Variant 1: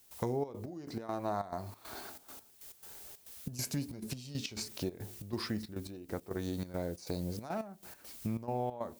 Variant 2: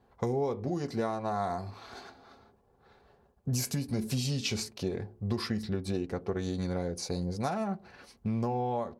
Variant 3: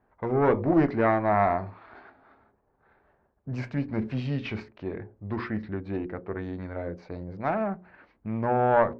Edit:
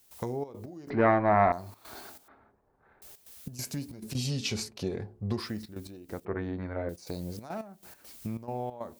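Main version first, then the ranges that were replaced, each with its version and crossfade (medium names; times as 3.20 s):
1
0.90–1.52 s: from 3
2.28–3.02 s: from 3
4.15–5.40 s: from 2
6.25–6.89 s: from 3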